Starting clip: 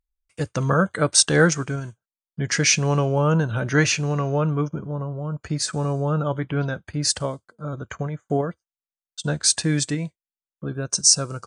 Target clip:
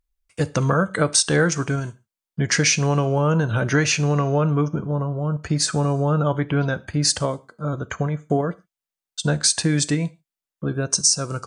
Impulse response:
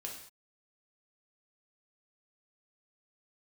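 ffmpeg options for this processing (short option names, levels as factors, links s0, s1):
-filter_complex "[0:a]acompressor=threshold=0.1:ratio=5,asplit=2[s0][s1];[1:a]atrim=start_sample=2205,asetrate=70560,aresample=44100[s2];[s1][s2]afir=irnorm=-1:irlink=0,volume=0.473[s3];[s0][s3]amix=inputs=2:normalize=0,volume=1.5"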